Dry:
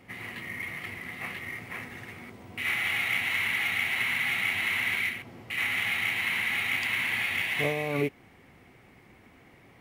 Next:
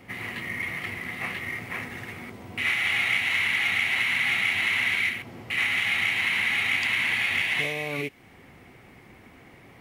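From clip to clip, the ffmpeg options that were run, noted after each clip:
-filter_complex "[0:a]acrossover=split=9400[a][b];[b]acompressor=threshold=-58dB:ratio=4:attack=1:release=60[c];[a][c]amix=inputs=2:normalize=0,acrossover=split=2000[d][e];[d]alimiter=level_in=4.5dB:limit=-24dB:level=0:latency=1:release=350,volume=-4.5dB[f];[f][e]amix=inputs=2:normalize=0,volume=5dB"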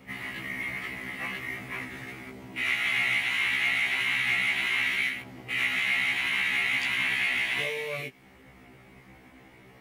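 -af "afftfilt=real='re*1.73*eq(mod(b,3),0)':imag='im*1.73*eq(mod(b,3),0)':win_size=2048:overlap=0.75"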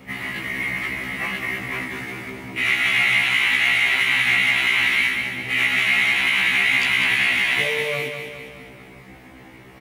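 -af "aecho=1:1:202|404|606|808|1010|1212:0.447|0.237|0.125|0.0665|0.0352|0.0187,volume=7.5dB"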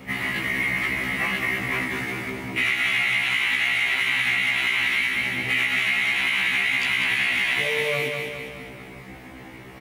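-af "acompressor=threshold=-22dB:ratio=6,volume=2.5dB"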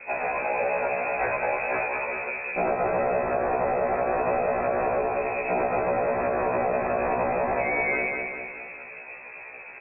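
-af "lowpass=f=2.3k:t=q:w=0.5098,lowpass=f=2.3k:t=q:w=0.6013,lowpass=f=2.3k:t=q:w=0.9,lowpass=f=2.3k:t=q:w=2.563,afreqshift=-2700"

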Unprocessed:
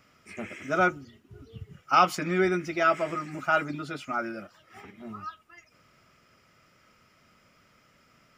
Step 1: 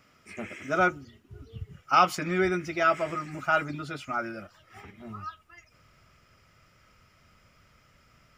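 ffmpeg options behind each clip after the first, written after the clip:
-af "asubboost=boost=4:cutoff=110"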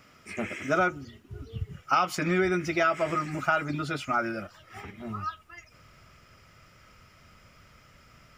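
-af "acompressor=threshold=-26dB:ratio=6,volume=5dB"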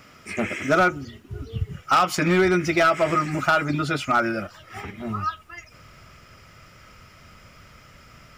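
-af "asoftclip=type=hard:threshold=-19.5dB,volume=7dB"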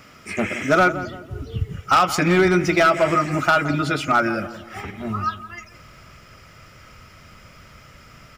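-filter_complex "[0:a]asplit=2[a][b];[b]adelay=169,lowpass=f=1.3k:p=1,volume=-12dB,asplit=2[c][d];[d]adelay=169,lowpass=f=1.3k:p=1,volume=0.44,asplit=2[e][f];[f]adelay=169,lowpass=f=1.3k:p=1,volume=0.44,asplit=2[g][h];[h]adelay=169,lowpass=f=1.3k:p=1,volume=0.44[i];[a][c][e][g][i]amix=inputs=5:normalize=0,volume=2.5dB"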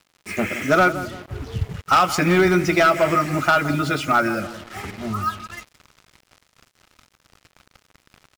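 -af "acrusher=bits=5:mix=0:aa=0.5"

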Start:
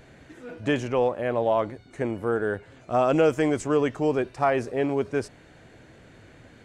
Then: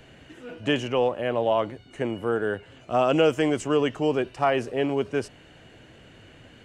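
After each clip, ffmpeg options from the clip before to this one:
-filter_complex "[0:a]equalizer=f=2.9k:t=o:w=0.21:g=12.5,acrossover=split=100|1200[a][b][c];[a]alimiter=level_in=24.5dB:limit=-24dB:level=0:latency=1,volume=-24.5dB[d];[d][b][c]amix=inputs=3:normalize=0"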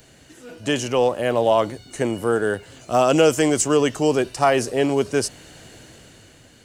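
-af "dynaudnorm=f=180:g=9:m=7.5dB,aexciter=amount=3.9:drive=6.8:freq=4.1k,volume=-1.5dB"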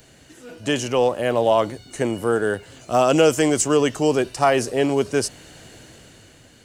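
-af anull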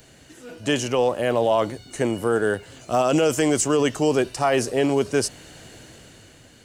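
-af "alimiter=limit=-10.5dB:level=0:latency=1:release=18"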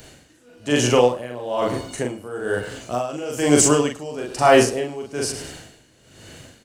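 -filter_complex "[0:a]asplit=2[a][b];[b]adelay=41,volume=-2dB[c];[a][c]amix=inputs=2:normalize=0,aecho=1:1:105|210|315:0.168|0.0537|0.0172,aeval=exprs='val(0)*pow(10,-19*(0.5-0.5*cos(2*PI*1.1*n/s))/20)':c=same,volume=5.5dB"

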